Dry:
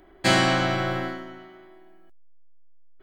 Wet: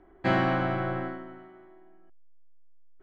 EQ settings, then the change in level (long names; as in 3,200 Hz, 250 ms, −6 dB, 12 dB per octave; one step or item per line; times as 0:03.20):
low-pass filter 1,600 Hz 12 dB per octave
notch filter 600 Hz, Q 12
−3.0 dB